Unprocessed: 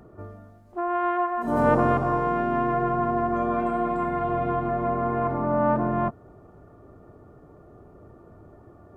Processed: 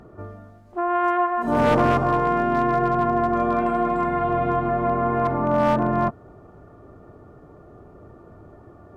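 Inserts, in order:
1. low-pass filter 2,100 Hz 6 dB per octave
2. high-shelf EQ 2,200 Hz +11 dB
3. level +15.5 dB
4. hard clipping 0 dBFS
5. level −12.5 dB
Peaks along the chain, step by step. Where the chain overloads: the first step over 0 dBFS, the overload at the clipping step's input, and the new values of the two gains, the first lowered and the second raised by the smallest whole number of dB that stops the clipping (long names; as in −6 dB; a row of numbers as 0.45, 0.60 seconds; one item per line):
−8.5, −7.0, +8.5, 0.0, −12.5 dBFS
step 3, 8.5 dB
step 3 +6.5 dB, step 5 −3.5 dB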